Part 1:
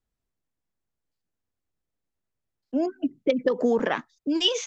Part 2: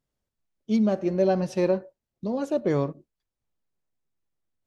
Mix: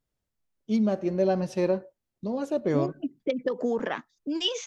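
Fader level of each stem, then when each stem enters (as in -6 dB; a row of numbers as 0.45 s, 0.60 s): -5.0 dB, -2.0 dB; 0.00 s, 0.00 s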